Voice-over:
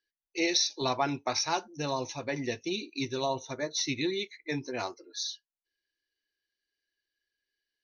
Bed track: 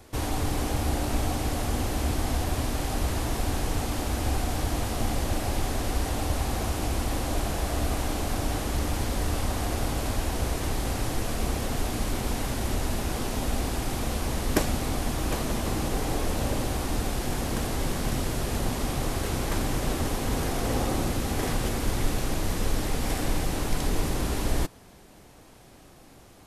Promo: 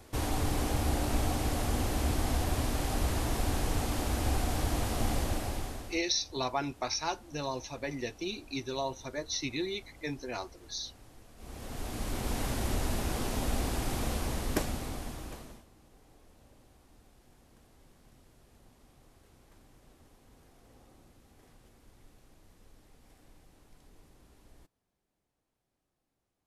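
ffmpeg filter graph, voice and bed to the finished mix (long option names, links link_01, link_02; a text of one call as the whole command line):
ffmpeg -i stem1.wav -i stem2.wav -filter_complex "[0:a]adelay=5550,volume=-3.5dB[link_01];[1:a]volume=20dB,afade=type=out:start_time=5.16:duration=0.86:silence=0.0668344,afade=type=in:start_time=11.36:duration=1.08:silence=0.0707946,afade=type=out:start_time=14.06:duration=1.6:silence=0.0354813[link_02];[link_01][link_02]amix=inputs=2:normalize=0" out.wav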